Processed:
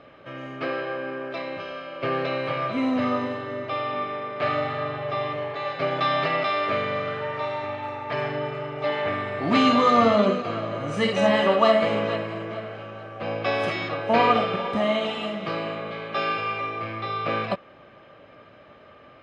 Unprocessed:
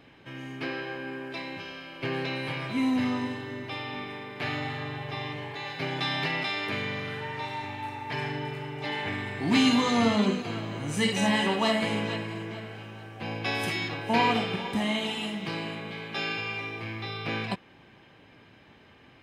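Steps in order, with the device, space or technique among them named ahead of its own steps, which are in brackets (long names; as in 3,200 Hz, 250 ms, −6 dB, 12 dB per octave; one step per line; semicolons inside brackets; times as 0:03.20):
inside a cardboard box (low-pass filter 4,800 Hz 12 dB per octave; hollow resonant body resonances 590/1,200 Hz, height 16 dB, ringing for 25 ms)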